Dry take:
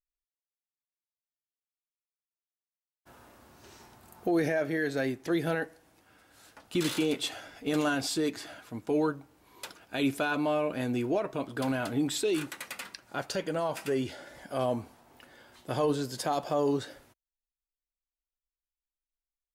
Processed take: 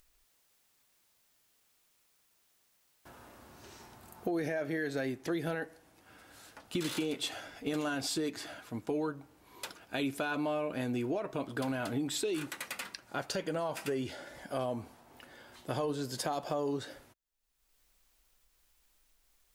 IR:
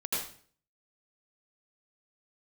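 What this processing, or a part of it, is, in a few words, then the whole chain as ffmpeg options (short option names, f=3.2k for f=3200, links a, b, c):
upward and downward compression: -af "acompressor=mode=upward:threshold=-50dB:ratio=2.5,acompressor=threshold=-31dB:ratio=4"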